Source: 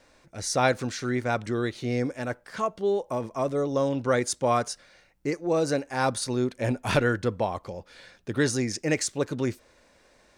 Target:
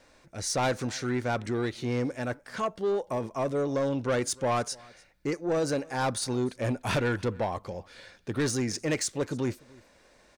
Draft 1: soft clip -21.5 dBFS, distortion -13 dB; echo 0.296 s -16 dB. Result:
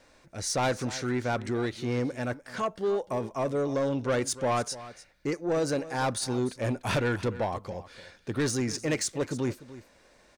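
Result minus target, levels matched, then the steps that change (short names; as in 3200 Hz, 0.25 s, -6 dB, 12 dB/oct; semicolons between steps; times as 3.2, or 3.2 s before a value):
echo-to-direct +8.5 dB
change: echo 0.296 s -24.5 dB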